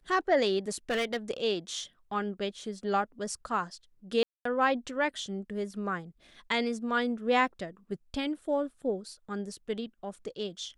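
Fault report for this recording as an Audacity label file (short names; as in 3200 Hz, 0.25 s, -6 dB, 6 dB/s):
0.680000	1.170000	clipped -26 dBFS
4.230000	4.450000	gap 0.224 s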